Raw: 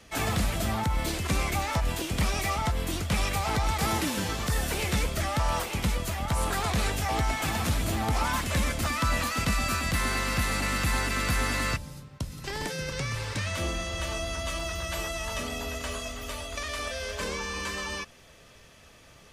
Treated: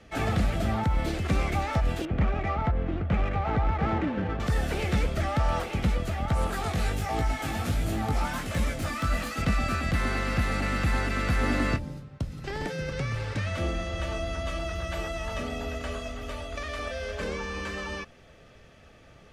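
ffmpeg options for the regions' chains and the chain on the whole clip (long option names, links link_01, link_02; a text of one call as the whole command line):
ffmpeg -i in.wav -filter_complex "[0:a]asettb=1/sr,asplit=3[link_01][link_02][link_03];[link_01]atrim=end=2.054[link_04];[link_02]atrim=start=2.05:end=4.4,asetpts=PTS-STARTPTS,afade=type=in:duration=0.004:curve=qsin,afade=type=out:start_time=2.346:duration=0.004:curve=qsin,lowpass=3000,adynamicsmooth=sensitivity=4:basefreq=1500[link_05];[link_03]atrim=start=4.396[link_06];[link_04][link_05]acrossfade=duration=0.004:curve1=hsin:curve2=qsin[link_07];[link_07][link_06]acrossfade=duration=0.004:curve1=qsin:curve2=hsin,asettb=1/sr,asplit=3[link_08][link_09][link_10];[link_08]atrim=end=6.474[link_11];[link_09]atrim=start=6.47:end=9.42,asetpts=PTS-STARTPTS,afade=type=in:duration=0.004:curve=qsin,afade=type=out:start_time=2.946:duration=0.004:curve=qsin,highshelf=frequency=6800:gain=12,aeval=exprs='(mod(5.96*val(0)+1,2)-1)/5.96':channel_layout=same,flanger=delay=18:depth=3.8:speed=1.4[link_12];[link_10]atrim=start=9.416[link_13];[link_11][link_12]acrossfade=duration=0.004:curve1=hsin:curve2=qsin[link_14];[link_14][link_13]acrossfade=duration=0.004:curve1=qsin:curve2=hsin,asettb=1/sr,asplit=3[link_15][link_16][link_17];[link_15]atrim=end=11.434[link_18];[link_16]atrim=start=11.43:end=11.98,asetpts=PTS-STARTPTS,afade=type=in:duration=0.004:curve=qsin,afade=type=out:start_time=0.546:duration=0.004:curve=qsin,equalizer=frequency=320:width=1:gain=7,asplit=2[link_19][link_20];[link_20]adelay=24,volume=-11dB[link_21];[link_19][link_21]amix=inputs=2:normalize=0,atrim=end_sample=24255[link_22];[link_17]atrim=start=11.976[link_23];[link_18][link_22]acrossfade=duration=0.004:curve1=hsin:curve2=qsin[link_24];[link_24][link_23]acrossfade=duration=0.004:curve1=qsin:curve2=hsin,lowpass=frequency=1600:poles=1,bandreject=frequency=1000:width=6,volume=2.5dB" out.wav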